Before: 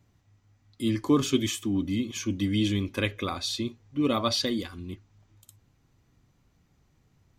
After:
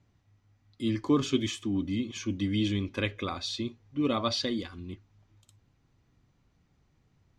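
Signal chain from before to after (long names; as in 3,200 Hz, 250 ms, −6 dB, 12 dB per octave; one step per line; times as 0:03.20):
low-pass filter 5,900 Hz 12 dB per octave
level −2.5 dB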